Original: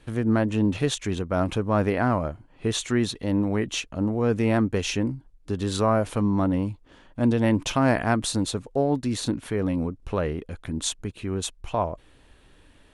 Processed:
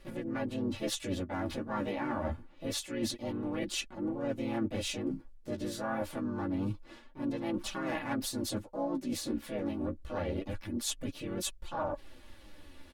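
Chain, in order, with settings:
pitch-shifted copies added +3 semitones −2 dB, +7 semitones −5 dB
comb filter 3.5 ms, depth 63%
reversed playback
downward compressor 6 to 1, threshold −29 dBFS, peak gain reduction 17.5 dB
reversed playback
flanger 0.26 Hz, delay 5 ms, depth 9.5 ms, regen +22%

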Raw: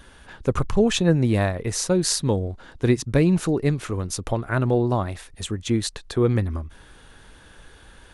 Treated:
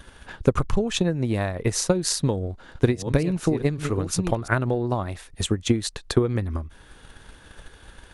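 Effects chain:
0:02.15–0:04.48: delay that plays each chunk backwards 540 ms, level −9.5 dB
downward compressor 6 to 1, threshold −21 dBFS, peak gain reduction 9 dB
transient designer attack +8 dB, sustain −2 dB

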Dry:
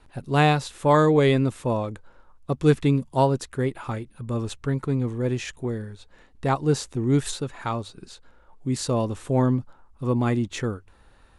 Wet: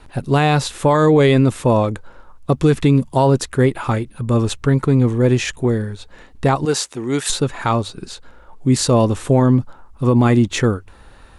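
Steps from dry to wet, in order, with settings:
0:06.65–0:07.30: high-pass filter 840 Hz 6 dB per octave
boost into a limiter +15.5 dB
level −4.5 dB

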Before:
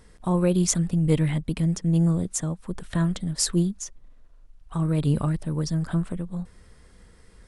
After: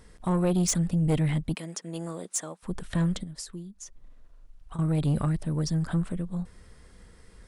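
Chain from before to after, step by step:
0:01.55–0:02.63: high-pass filter 470 Hz 12 dB per octave
0:03.23–0:04.79: downward compressor 10 to 1, threshold −37 dBFS, peak gain reduction 19.5 dB
soft clipping −18.5 dBFS, distortion −14 dB

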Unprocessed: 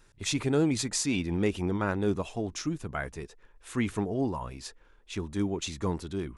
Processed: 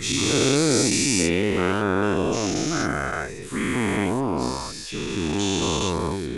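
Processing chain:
every bin's largest magnitude spread in time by 480 ms

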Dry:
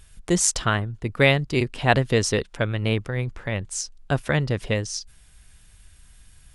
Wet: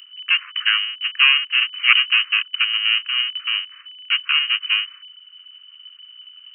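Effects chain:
each half-wave held at its own peak
voice inversion scrambler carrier 3,000 Hz
Butterworth high-pass 1,100 Hz 96 dB per octave
level −1.5 dB

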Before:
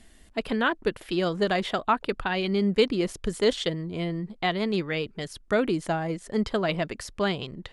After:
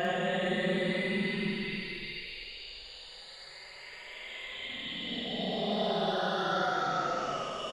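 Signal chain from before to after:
every frequency bin delayed by itself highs late, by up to 180 ms
extreme stretch with random phases 33×, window 0.05 s, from 0:01.58
double-tracking delay 48 ms −4 dB
level −7 dB

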